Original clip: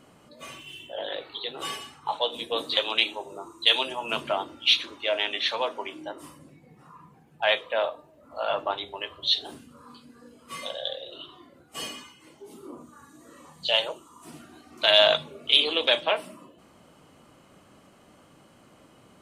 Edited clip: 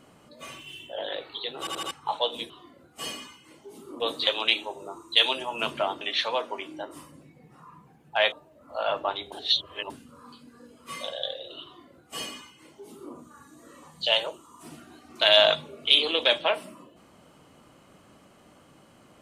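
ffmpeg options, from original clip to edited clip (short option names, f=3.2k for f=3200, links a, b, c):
-filter_complex "[0:a]asplit=11[a][b][c][d][e][f][g][h][i][j][k];[a]atrim=end=1.672[l];[b]atrim=start=1.588:end=1.672[m];[c]atrim=start=1.588:end=1.672[n];[d]atrim=start=1.588:end=1.672[o];[e]atrim=start=1.908:end=2.502[p];[f]atrim=start=11.258:end=12.762[q];[g]atrim=start=2.498:end=4.512[r];[h]atrim=start=5.278:end=7.592[s];[i]atrim=start=7.938:end=8.942[t];[j]atrim=start=8.938:end=9.522,asetpts=PTS-STARTPTS,areverse[u];[k]atrim=start=9.518[v];[l][m]acrossfade=d=0.004:c1=hsin:c2=hsin[w];[w][n]acrossfade=d=0.004:c1=hsin:c2=hsin[x];[x][o]acrossfade=d=0.004:c1=hsin:c2=hsin[y];[y][p]acrossfade=d=0.004:c1=hsin:c2=hsin[z];[z][q]acrossfade=d=0.004:c1=hsin:c2=hsin[aa];[aa][r]acrossfade=d=0.004:c1=hsin:c2=hsin[ab];[ab][s]acrossfade=d=0.004:c1=hsin:c2=hsin[ac];[ac][t]acrossfade=d=0.004:c1=hsin:c2=hsin[ad];[ad][u]acrossfade=d=0.004:c1=hsin:c2=hsin[ae];[ae][v]acrossfade=d=0.004:c1=hsin:c2=hsin"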